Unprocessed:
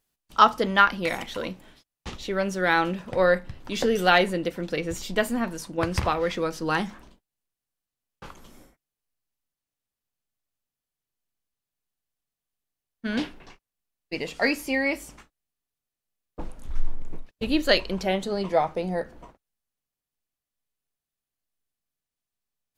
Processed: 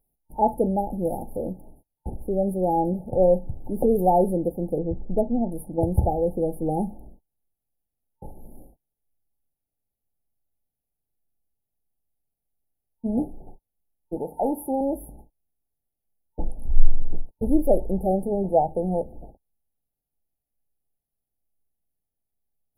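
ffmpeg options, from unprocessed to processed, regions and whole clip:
-filter_complex "[0:a]asettb=1/sr,asplit=3[a][b][c];[a]atrim=end=4.784[d];[b]atrim=start=4.78:end=5.52,asetpts=PTS-STARTPTS,afade=t=in:d=0.004:c=qsin,afade=t=out:st=0.736:d=0.004:c=qsin,equalizer=f=8.7k:w=0.36:g=-10.5,adynamicsmooth=sensitivity=2:basefreq=1k[e];[c]atrim=start=5.516[f];[d][e]acrossfade=d=0.004:c1=hsin:c2=qsin[g];[g][f]acrossfade=d=0.004:c1=qsin:c2=hsin,asettb=1/sr,asplit=3[h][i][j];[h]atrim=end=14.164[k];[i]atrim=start=14.16:end=14.81,asetpts=PTS-STARTPTS,afade=t=in:d=0.004:c=qsin,afade=t=out:st=0.646:d=0.004:c=qsin,highpass=f=180:p=1,equalizer=f=880:w=3.3:g=13,aeval=exprs='(tanh(6.31*val(0)+0.05)-tanh(0.05))/6.31':c=same[l];[j]atrim=start=14.806[m];[k][l]acrossfade=d=0.004:c1=hsin:c2=qsin[n];[n][m]acrossfade=d=0.004:c1=qsin:c2=hsin,lowshelf=f=90:g=8,afftfilt=real='re*(1-between(b*sr/4096,900,9400))':imag='im*(1-between(b*sr/4096,900,9400))':win_size=4096:overlap=0.75,volume=2.5dB"

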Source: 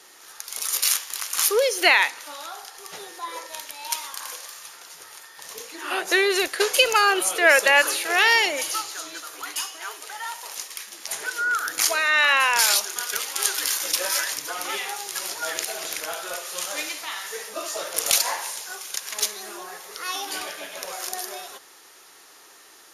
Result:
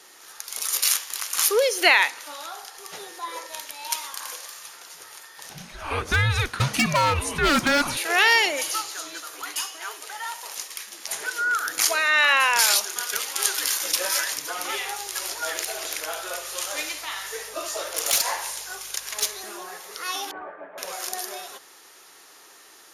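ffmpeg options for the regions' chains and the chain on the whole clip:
-filter_complex "[0:a]asettb=1/sr,asplit=3[a][b][c];[a]atrim=end=5.494[d];[b]atrim=start=5.49:end=7.97,asetpts=PTS-STARTPTS,afade=t=in:d=0.004:c=qsin,afade=t=out:st=2.476:d=0.004:c=qsin,highshelf=f=6k:g=-10.5,afreqshift=-290,aeval=exprs='0.211*(abs(mod(val(0)/0.211+3,4)-2)-1)':c=same[e];[c]atrim=start=7.966[f];[d][e]acrossfade=d=0.004:c1=hsin:c2=qsin[g];[g][f]acrossfade=d=0.004:c1=qsin:c2=hsin,asettb=1/sr,asplit=3[h][i][j];[h]atrim=end=14.714[k];[i]atrim=start=14.71:end=19.44,asetpts=PTS-STARTPTS,afade=t=in:d=0.004:c=qsin,afade=t=out:st=4.726:d=0.004:c=qsin,highpass=f=280:w=0.5412,highpass=f=280:w=1.3066,aeval=exprs='val(0)+0.000794*(sin(2*PI*50*n/s)+sin(2*PI*2*50*n/s)/2+sin(2*PI*3*50*n/s)/3+sin(2*PI*4*50*n/s)/4+sin(2*PI*5*50*n/s)/5)':c=same,volume=14.5dB,asoftclip=hard,volume=-14.5dB[l];[j]atrim=start=19.436[m];[k][l]acrossfade=d=0.004:c1=hsin:c2=qsin[n];[n][m]acrossfade=d=0.004:c1=qsin:c2=hsin,asettb=1/sr,asplit=3[o][p][q];[o]atrim=end=20.314[r];[p]atrim=start=20.31:end=20.78,asetpts=PTS-STARTPTS,afade=t=in:d=0.004:c=qsin,afade=t=out:st=0.466:d=0.004:c=qsin,lowpass=f=1.5k:w=0.5412,lowpass=f=1.5k:w=1.3066,asplit=2[s][t];[t]highpass=f=720:p=1,volume=7dB,asoftclip=type=tanh:threshold=-22dB[u];[s][u]amix=inputs=2:normalize=0,lowpass=f=1.1k:p=1,volume=-6dB[v];[q]atrim=start=20.776[w];[r][v]acrossfade=d=0.004:c1=hsin:c2=qsin[x];[x][w]acrossfade=d=0.004:c1=qsin:c2=hsin"

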